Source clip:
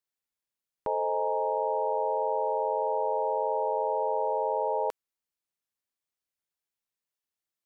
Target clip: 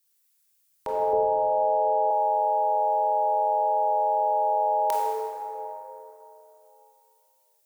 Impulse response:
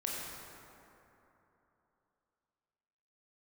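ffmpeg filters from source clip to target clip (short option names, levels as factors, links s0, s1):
-filter_complex "[1:a]atrim=start_sample=2205[s0];[0:a][s0]afir=irnorm=-1:irlink=0,acrossover=split=480[s1][s2];[s2]crystalizer=i=8:c=0[s3];[s1][s3]amix=inputs=2:normalize=0,asettb=1/sr,asplit=3[s4][s5][s6];[s4]atrim=end=1.134[s7];[s5]atrim=start=1.13:end=2.11,asetpts=PTS-STARTPTS,afade=t=in:d=0.004:c=qsin,afade=t=out:st=0.976:d=0.004:c=qsin,tiltshelf=f=790:g=8[s8];[s6]atrim=start=2.106[s9];[s7][s8]acrossfade=d=0.004:c1=hsin:c2=qsin[s10];[s10][s9]acrossfade=d=0.004:c1=qsin:c2=hsin"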